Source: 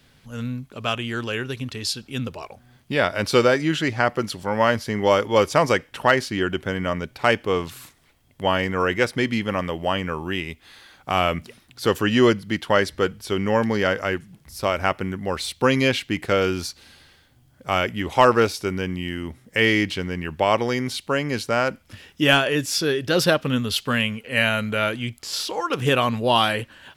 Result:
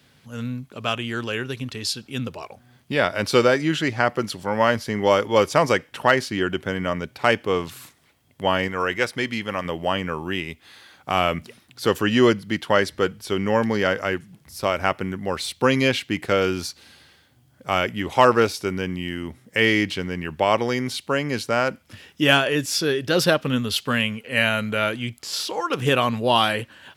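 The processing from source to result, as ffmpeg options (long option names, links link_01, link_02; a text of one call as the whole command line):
ffmpeg -i in.wav -filter_complex "[0:a]asettb=1/sr,asplit=3[link_01][link_02][link_03];[link_01]atrim=end=8.684[link_04];[link_02]atrim=start=8.68:end=9.65,asetpts=PTS-STARTPTS,afade=type=in:duration=0.004:curve=qsin,afade=type=out:start_time=0.966:duration=0.004:curve=qsin,equalizer=frequency=180:width=0.35:gain=-5.5[link_05];[link_03]atrim=start=9.646[link_06];[link_04][link_05]acrossfade=duration=0.004:curve1=hsin:curve2=qsin[link_07];[link_07][link_06]acrossfade=duration=0.004:curve1=qsin:curve2=hsin,highpass=85" out.wav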